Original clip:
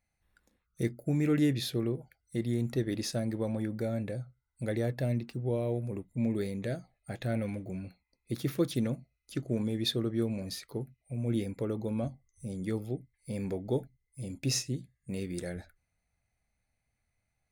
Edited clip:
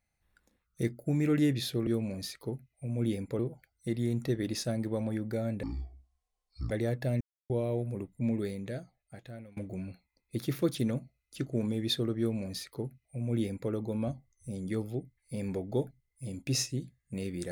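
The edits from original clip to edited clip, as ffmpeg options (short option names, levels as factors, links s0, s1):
-filter_complex "[0:a]asplit=8[s0][s1][s2][s3][s4][s5][s6][s7];[s0]atrim=end=1.872[s8];[s1]atrim=start=10.148:end=11.672[s9];[s2]atrim=start=1.868:end=4.114[s10];[s3]atrim=start=4.11:end=4.67,asetpts=PTS-STARTPTS,asetrate=22932,aresample=44100,atrim=end_sample=47492,asetpts=PTS-STARTPTS[s11];[s4]atrim=start=4.666:end=5.17,asetpts=PTS-STARTPTS,afade=t=out:st=0.5:d=0.004:c=hsin[s12];[s5]atrim=start=5.17:end=5.46,asetpts=PTS-STARTPTS,volume=0[s13];[s6]atrim=start=5.46:end=7.53,asetpts=PTS-STARTPTS,afade=t=in:d=0.004:c=hsin,afade=t=out:st=0.74:d=1.33:silence=0.0668344[s14];[s7]atrim=start=7.53,asetpts=PTS-STARTPTS,afade=t=in:d=0.004:c=hsin:silence=0.0668344[s15];[s8][s9]acrossfade=d=0.004:c1=hsin:c2=hsin[s16];[s16][s10]acrossfade=d=0.004:c1=hsin:c2=hsin[s17];[s17][s11]acrossfade=d=0.004:c1=hsin:c2=hsin[s18];[s12][s13][s14][s15]concat=n=4:v=0:a=1[s19];[s18][s19]acrossfade=d=0.004:c1=hsin:c2=hsin"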